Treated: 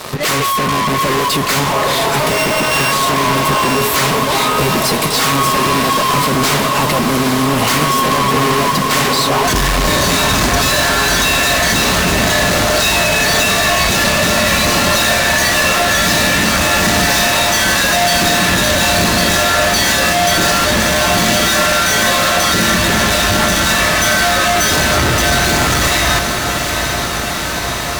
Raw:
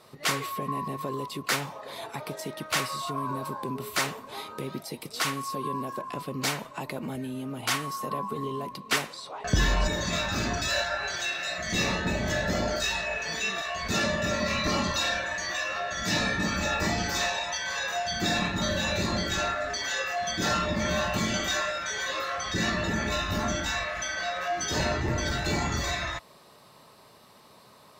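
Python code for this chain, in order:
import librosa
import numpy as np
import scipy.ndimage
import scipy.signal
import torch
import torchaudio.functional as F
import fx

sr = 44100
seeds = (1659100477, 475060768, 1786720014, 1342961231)

y = fx.sample_sort(x, sr, block=16, at=(2.28, 2.91), fade=0.02)
y = fx.fuzz(y, sr, gain_db=49.0, gate_db=-55.0)
y = fx.echo_diffused(y, sr, ms=822, feedback_pct=77, wet_db=-6.5)
y = y * 10.0 ** (-1.0 / 20.0)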